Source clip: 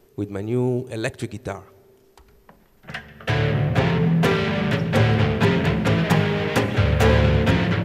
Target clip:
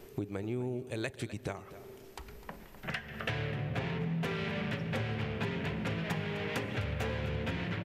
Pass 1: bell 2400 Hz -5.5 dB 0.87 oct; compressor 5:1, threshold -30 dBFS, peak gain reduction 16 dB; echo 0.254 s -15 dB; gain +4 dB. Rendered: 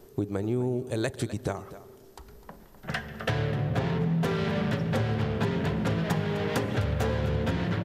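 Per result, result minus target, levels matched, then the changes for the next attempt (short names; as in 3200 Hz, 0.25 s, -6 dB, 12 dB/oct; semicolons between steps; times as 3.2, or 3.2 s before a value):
compressor: peak gain reduction -8 dB; 2000 Hz band -4.5 dB
change: compressor 5:1, threshold -39.5 dBFS, peak gain reduction 23.5 dB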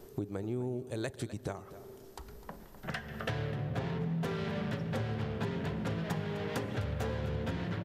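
2000 Hz band -4.0 dB
change: bell 2400 Hz +4 dB 0.87 oct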